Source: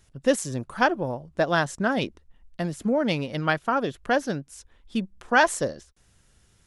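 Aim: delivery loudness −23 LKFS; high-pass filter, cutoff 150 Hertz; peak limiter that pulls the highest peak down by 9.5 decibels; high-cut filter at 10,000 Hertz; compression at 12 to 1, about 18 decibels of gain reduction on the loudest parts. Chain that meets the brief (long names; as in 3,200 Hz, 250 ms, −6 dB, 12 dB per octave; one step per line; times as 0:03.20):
high-pass filter 150 Hz
low-pass filter 10,000 Hz
downward compressor 12 to 1, threshold −32 dBFS
level +17.5 dB
brickwall limiter −11.5 dBFS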